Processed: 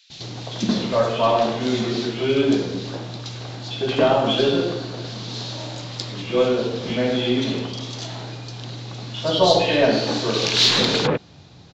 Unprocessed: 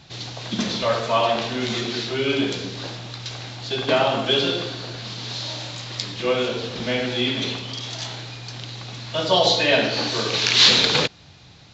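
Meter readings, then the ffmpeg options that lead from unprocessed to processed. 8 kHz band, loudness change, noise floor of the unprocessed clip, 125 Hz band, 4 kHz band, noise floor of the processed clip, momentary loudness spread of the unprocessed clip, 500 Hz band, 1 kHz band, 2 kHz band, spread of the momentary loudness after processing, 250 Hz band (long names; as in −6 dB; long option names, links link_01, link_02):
can't be measured, 0.0 dB, −48 dBFS, +3.0 dB, −2.5 dB, −45 dBFS, 16 LU, +3.5 dB, +1.0 dB, −3.5 dB, 16 LU, +5.0 dB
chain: -filter_complex "[0:a]aeval=exprs='0.891*(cos(1*acos(clip(val(0)/0.891,-1,1)))-cos(1*PI/2))+0.0141*(cos(6*acos(clip(val(0)/0.891,-1,1)))-cos(6*PI/2))':channel_layout=same,equalizer=frequency=270:width=0.37:gain=7,acrossover=split=2200[link_01][link_02];[link_01]adelay=100[link_03];[link_03][link_02]amix=inputs=2:normalize=0,volume=-2dB"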